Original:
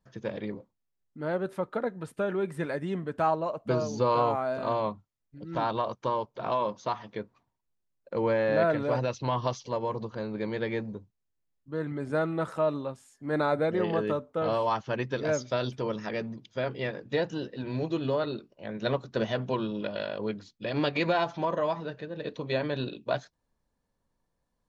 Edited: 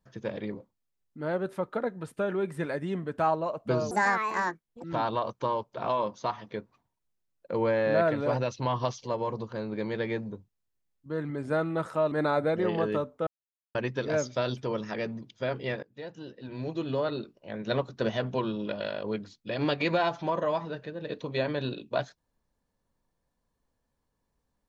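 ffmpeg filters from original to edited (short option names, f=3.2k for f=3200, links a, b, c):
-filter_complex "[0:a]asplit=7[a][b][c][d][e][f][g];[a]atrim=end=3.914[h];[b]atrim=start=3.91:end=5.46,asetpts=PTS-STARTPTS,asetrate=73647,aresample=44100,atrim=end_sample=40931,asetpts=PTS-STARTPTS[i];[c]atrim=start=5.456:end=12.742[j];[d]atrim=start=13.268:end=14.42,asetpts=PTS-STARTPTS,afade=t=out:st=1.148:d=0.004:c=hsin[k];[e]atrim=start=14.42:end=14.9,asetpts=PTS-STARTPTS,volume=0[l];[f]atrim=start=14.9:end=16.98,asetpts=PTS-STARTPTS,afade=t=in:d=0.004:c=hsin,afade=t=out:st=2.076:d=0.004:c=hsin:silence=0.0794328[m];[g]atrim=start=16.98,asetpts=PTS-STARTPTS,afade=t=in:d=1.32:silence=0.0794328[n];[h][i]acrossfade=d=0.004:c1=hsin:c2=hsin[o];[o][j]acrossfade=d=0.004:c1=hsin:c2=hsin[p];[k][l][m][n]concat=n=4:v=0:a=1[q];[p][q]acrossfade=d=0.004:c1=hsin:c2=hsin"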